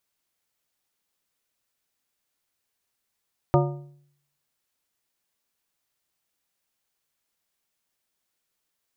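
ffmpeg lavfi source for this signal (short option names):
-f lavfi -i "aevalsrc='0.158*pow(10,-3*t/0.69)*sin(2*PI*143*t)+0.126*pow(10,-3*t/0.524)*sin(2*PI*357.5*t)+0.1*pow(10,-3*t/0.455)*sin(2*PI*572*t)+0.0794*pow(10,-3*t/0.426)*sin(2*PI*715*t)+0.0631*pow(10,-3*t/0.394)*sin(2*PI*929.5*t)+0.0501*pow(10,-3*t/0.363)*sin(2*PI*1215.5*t)':d=1.55:s=44100"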